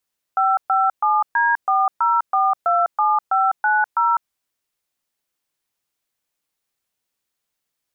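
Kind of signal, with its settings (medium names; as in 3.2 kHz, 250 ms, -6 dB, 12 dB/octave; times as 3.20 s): DTMF "557D40427590", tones 202 ms, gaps 125 ms, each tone -17 dBFS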